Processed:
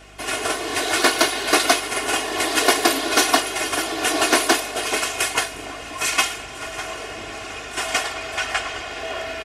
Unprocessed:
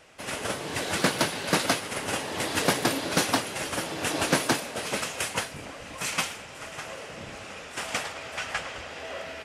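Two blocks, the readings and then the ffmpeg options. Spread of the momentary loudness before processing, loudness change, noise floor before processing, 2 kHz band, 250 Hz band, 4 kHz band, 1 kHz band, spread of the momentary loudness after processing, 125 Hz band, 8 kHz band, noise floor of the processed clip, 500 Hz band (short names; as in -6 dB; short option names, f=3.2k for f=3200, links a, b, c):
14 LU, +8.0 dB, -43 dBFS, +8.5 dB, +4.5 dB, +8.5 dB, +8.5 dB, 13 LU, -6.0 dB, +8.5 dB, -35 dBFS, +7.0 dB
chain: -filter_complex "[0:a]aecho=1:1:2.8:0.89,acrossover=split=290[a][b];[a]acompressor=threshold=-50dB:ratio=6[c];[c][b]amix=inputs=2:normalize=0,aeval=exprs='val(0)+0.002*(sin(2*PI*50*n/s)+sin(2*PI*2*50*n/s)/2+sin(2*PI*3*50*n/s)/3+sin(2*PI*4*50*n/s)/4+sin(2*PI*5*50*n/s)/5)':c=same,volume=6dB"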